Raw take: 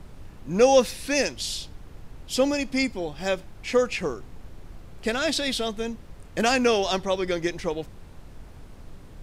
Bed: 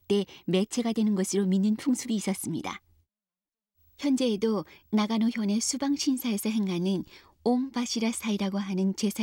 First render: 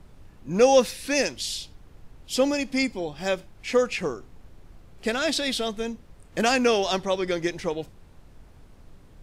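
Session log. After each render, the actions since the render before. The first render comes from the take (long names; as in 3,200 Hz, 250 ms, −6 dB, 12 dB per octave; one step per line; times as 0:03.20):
noise reduction from a noise print 6 dB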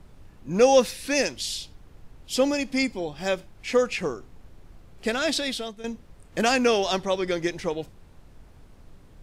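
0:05.36–0:05.84: fade out, to −13.5 dB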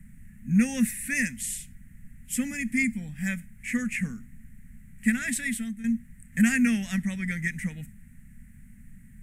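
drawn EQ curve 110 Hz 0 dB, 230 Hz +10 dB, 340 Hz −27 dB, 1,100 Hz −23 dB, 1,900 Hz +8 dB, 3,400 Hz −16 dB, 4,800 Hz −20 dB, 8,100 Hz +7 dB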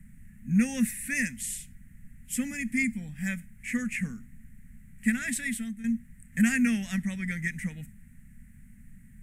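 level −2 dB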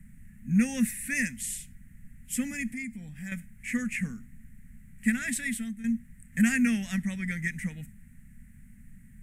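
0:02.73–0:03.32: downward compressor 2 to 1, threshold −41 dBFS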